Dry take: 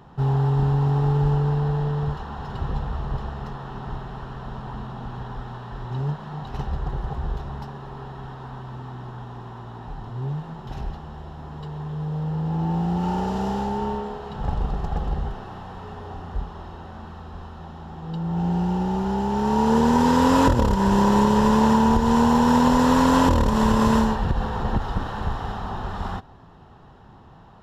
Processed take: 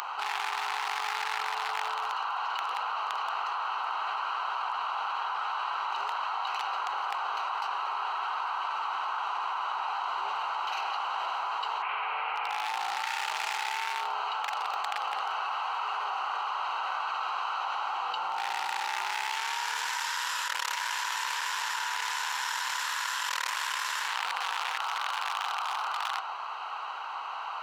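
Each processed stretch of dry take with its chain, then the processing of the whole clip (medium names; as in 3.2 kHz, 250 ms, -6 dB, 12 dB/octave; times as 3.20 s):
11.82–12.69 s: bass shelf 67 Hz -7.5 dB + frequency shift -15 Hz + resonant low-pass 2.3 kHz, resonance Q 5
whole clip: local Wiener filter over 25 samples; high-pass 1.5 kHz 24 dB/octave; level flattener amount 100%; trim -2.5 dB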